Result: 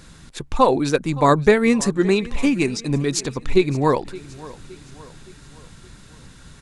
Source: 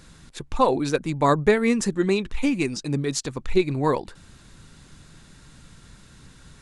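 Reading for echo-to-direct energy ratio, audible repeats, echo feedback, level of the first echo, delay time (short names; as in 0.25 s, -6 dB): -18.5 dB, 3, 49%, -19.5 dB, 0.568 s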